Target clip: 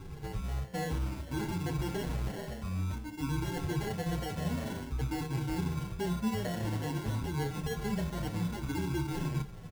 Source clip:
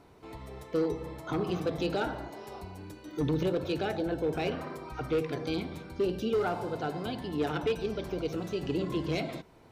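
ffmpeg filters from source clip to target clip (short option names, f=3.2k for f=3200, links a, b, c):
-filter_complex "[0:a]afftfilt=real='re*pow(10,12/40*sin(2*PI*(0.64*log(max(b,1)*sr/1024/100)/log(2)-(0.54)*(pts-256)/sr)))':imag='im*pow(10,12/40*sin(2*PI*(0.64*log(max(b,1)*sr/1024/100)/log(2)-(0.54)*(pts-256)/sr)))':win_size=1024:overlap=0.75,alimiter=limit=-21dB:level=0:latency=1:release=195,bass=f=250:g=15,treble=f=4k:g=7,acrusher=samples=36:mix=1:aa=0.000001,areverse,acompressor=threshold=-33dB:ratio=5,areverse,lowshelf=f=210:g=3.5,asplit=2[a][b];[b]adelay=28,volume=-12dB[c];[a][c]amix=inputs=2:normalize=0,asplit=2[d][e];[e]adelay=7.6,afreqshift=-2.5[f];[d][f]amix=inputs=2:normalize=1,volume=2dB"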